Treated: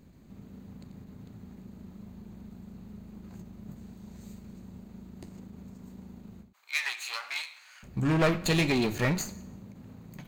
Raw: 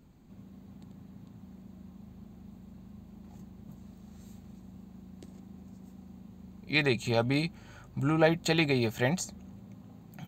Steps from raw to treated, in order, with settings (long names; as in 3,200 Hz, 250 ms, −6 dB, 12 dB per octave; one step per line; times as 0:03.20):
lower of the sound and its delayed copy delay 0.45 ms
on a send at −14.5 dB: convolution reverb RT60 0.75 s, pre-delay 8 ms
on the sum: flanger 1.5 Hz, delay 9.9 ms, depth 5.5 ms, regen −73%
in parallel at −4.5 dB: wave folding −30 dBFS
0:06.53–0:07.83: on the sum: high-pass filter 1,000 Hz 24 dB per octave
every ending faded ahead of time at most 140 dB per second
level +4 dB